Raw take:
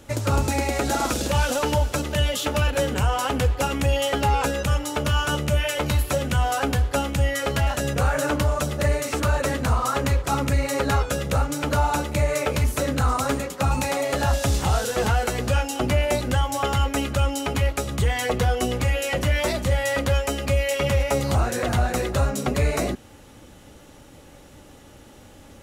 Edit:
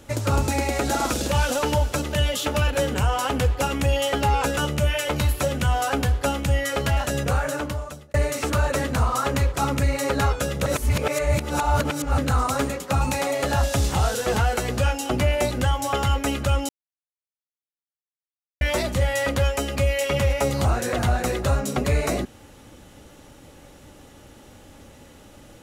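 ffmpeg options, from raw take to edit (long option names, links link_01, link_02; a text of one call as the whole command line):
ffmpeg -i in.wav -filter_complex "[0:a]asplit=7[link_01][link_02][link_03][link_04][link_05][link_06][link_07];[link_01]atrim=end=4.572[link_08];[link_02]atrim=start=5.268:end=8.84,asetpts=PTS-STARTPTS,afade=type=out:start_time=2.662:duration=0.91[link_09];[link_03]atrim=start=8.84:end=11.362,asetpts=PTS-STARTPTS,afade=type=in:duration=0.004:curve=hsin[link_10];[link_04]atrim=start=11.358:end=12.882,asetpts=PTS-STARTPTS,areverse[link_11];[link_05]atrim=start=12.878:end=17.39,asetpts=PTS-STARTPTS,afade=type=out:start_time=4.508:duration=0.004:curve=hsin[link_12];[link_06]atrim=start=17.39:end=19.31,asetpts=PTS-STARTPTS,volume=0[link_13];[link_07]atrim=start=19.31,asetpts=PTS-STARTPTS,afade=type=in:duration=0.004:curve=hsin[link_14];[link_09][link_10]concat=n=2:v=0:a=1[link_15];[link_08][link_15]acrossfade=duration=0.004:curve1=hsin:curve2=hsin[link_16];[link_16][link_11]acrossfade=duration=0.004:curve1=hsin:curve2=hsin[link_17];[link_12][link_13][link_14]concat=n=3:v=0:a=1[link_18];[link_17][link_18]acrossfade=duration=0.004:curve1=hsin:curve2=hsin" out.wav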